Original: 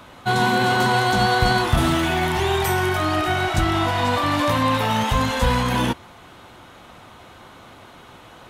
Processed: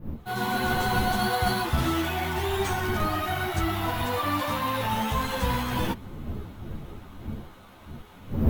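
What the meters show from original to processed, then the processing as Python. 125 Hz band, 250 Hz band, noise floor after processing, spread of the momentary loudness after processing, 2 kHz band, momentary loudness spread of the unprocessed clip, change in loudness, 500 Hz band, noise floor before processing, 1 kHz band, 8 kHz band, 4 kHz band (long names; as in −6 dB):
−6.0 dB, −6.0 dB, −49 dBFS, 15 LU, −8.0 dB, 3 LU, −7.5 dB, −7.5 dB, −45 dBFS, −7.0 dB, −6.0 dB, −8.0 dB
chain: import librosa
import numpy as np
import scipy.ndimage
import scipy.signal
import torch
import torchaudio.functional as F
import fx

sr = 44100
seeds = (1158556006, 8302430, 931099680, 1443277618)

y = fx.fade_in_head(x, sr, length_s=0.53)
y = fx.dmg_wind(y, sr, seeds[0], corner_hz=180.0, level_db=-28.0)
y = np.repeat(y[::3], 3)[:len(y)]
y = fx.ensemble(y, sr)
y = y * librosa.db_to_amplitude(-4.0)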